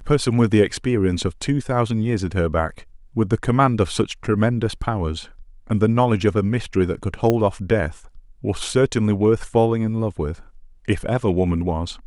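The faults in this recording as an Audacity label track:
7.300000	7.300000	pop -7 dBFS

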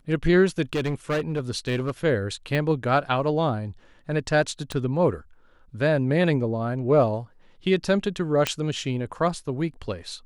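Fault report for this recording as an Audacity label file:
0.730000	1.910000	clipped -21 dBFS
2.550000	2.550000	pop -15 dBFS
4.720000	4.720000	pop -16 dBFS
8.470000	8.470000	pop -7 dBFS

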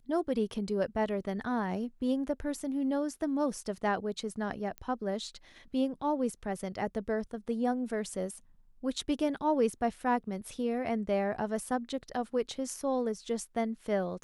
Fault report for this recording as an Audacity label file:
4.780000	4.780000	pop -25 dBFS

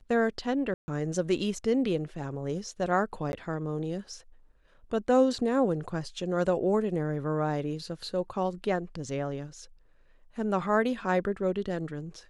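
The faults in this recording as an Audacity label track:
0.740000	0.880000	gap 0.14 s
3.320000	3.330000	gap 11 ms

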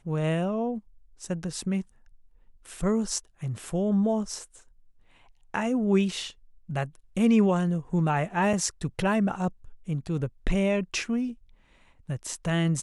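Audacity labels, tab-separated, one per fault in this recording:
8.530000	8.530000	gap 4.5 ms

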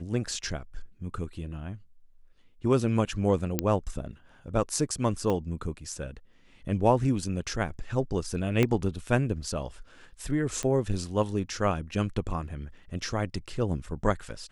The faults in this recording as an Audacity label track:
3.590000	3.590000	pop -9 dBFS
5.300000	5.300000	pop -17 dBFS
8.630000	8.630000	pop -11 dBFS
10.630000	10.630000	pop -18 dBFS

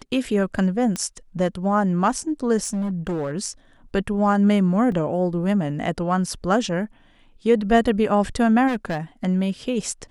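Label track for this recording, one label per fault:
0.960000	0.960000	pop -12 dBFS
2.630000	3.330000	clipped -21.5 dBFS
4.920000	4.920000	gap 2.5 ms
8.670000	8.990000	clipped -20 dBFS

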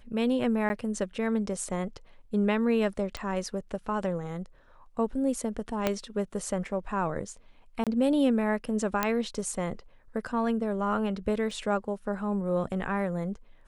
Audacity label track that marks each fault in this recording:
0.690000	0.700000	gap 10 ms
3.170000	3.170000	pop -20 dBFS
5.870000	5.870000	pop -11 dBFS
7.840000	7.870000	gap 27 ms
9.030000	9.030000	pop -10 dBFS
11.510000	11.510000	gap 2.7 ms

